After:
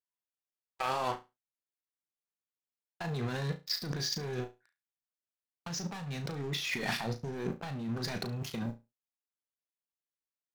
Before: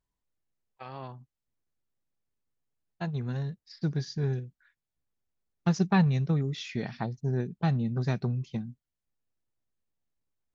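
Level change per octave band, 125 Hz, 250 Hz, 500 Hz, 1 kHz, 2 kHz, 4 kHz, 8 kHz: -9.5 dB, -8.5 dB, -2.0 dB, 0.0 dB, +1.5 dB, +7.0 dB, n/a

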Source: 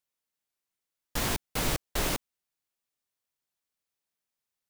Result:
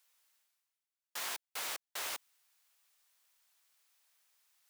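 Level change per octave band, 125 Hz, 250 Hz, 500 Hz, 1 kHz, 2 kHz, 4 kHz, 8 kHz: under -35 dB, -27.0 dB, -16.5 dB, -9.5 dB, -7.0 dB, -7.0 dB, -7.0 dB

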